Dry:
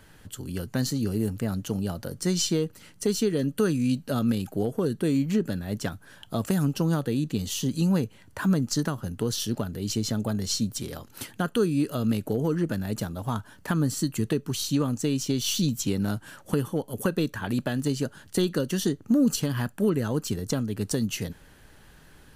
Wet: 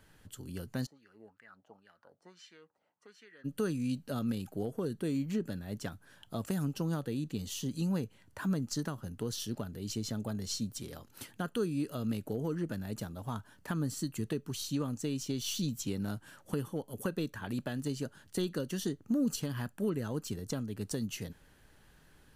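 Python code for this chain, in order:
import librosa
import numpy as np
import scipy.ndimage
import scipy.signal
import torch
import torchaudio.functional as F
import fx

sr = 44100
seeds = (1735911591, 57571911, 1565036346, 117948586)

y = fx.wah_lfo(x, sr, hz=fx.line((0.85, 3.1), (3.44, 1.0)), low_hz=680.0, high_hz=1900.0, q=4.7, at=(0.85, 3.44), fade=0.02)
y = y * 10.0 ** (-9.0 / 20.0)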